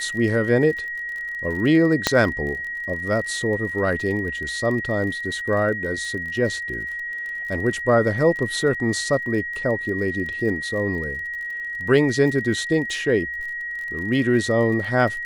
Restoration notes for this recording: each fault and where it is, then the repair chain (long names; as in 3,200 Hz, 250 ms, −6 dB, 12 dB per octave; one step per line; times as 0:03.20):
surface crackle 37 per second −31 dBFS
whistle 1,900 Hz −27 dBFS
0:02.07: click −2 dBFS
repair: click removal
notch filter 1,900 Hz, Q 30